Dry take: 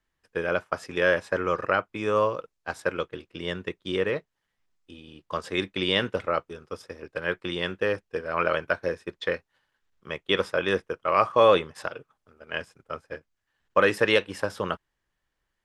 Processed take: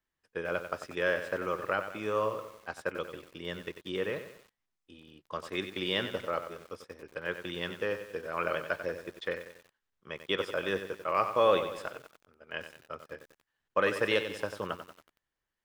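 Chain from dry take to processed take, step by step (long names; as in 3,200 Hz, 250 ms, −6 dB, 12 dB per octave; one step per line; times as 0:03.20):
low-shelf EQ 66 Hz −6.5 dB
feedback echo at a low word length 93 ms, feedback 55%, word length 7 bits, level −9.5 dB
level −7 dB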